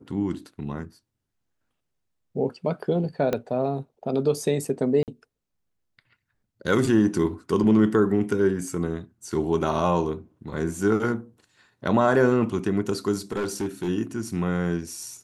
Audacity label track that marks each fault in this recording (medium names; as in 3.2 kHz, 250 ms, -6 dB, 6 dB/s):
3.330000	3.330000	pop -12 dBFS
5.030000	5.080000	dropout 48 ms
13.320000	13.890000	clipped -23 dBFS